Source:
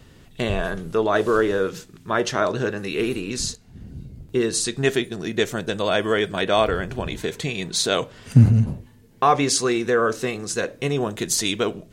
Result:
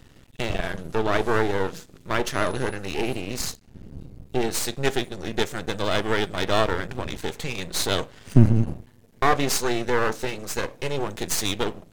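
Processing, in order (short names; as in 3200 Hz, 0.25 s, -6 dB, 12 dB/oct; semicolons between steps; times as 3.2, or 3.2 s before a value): half-wave rectifier; 2.32–2.75 whine 10000 Hz -48 dBFS; gain +1 dB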